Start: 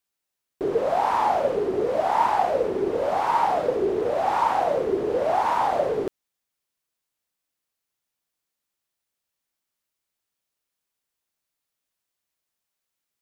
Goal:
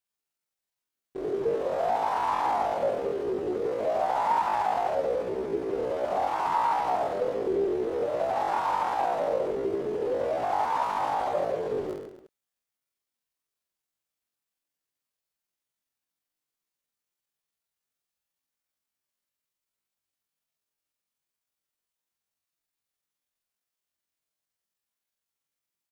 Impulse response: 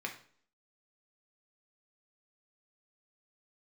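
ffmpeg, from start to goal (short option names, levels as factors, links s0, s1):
-af "aecho=1:1:30|63|99.3|139.2|183.2:0.631|0.398|0.251|0.158|0.1,atempo=0.51,volume=0.473"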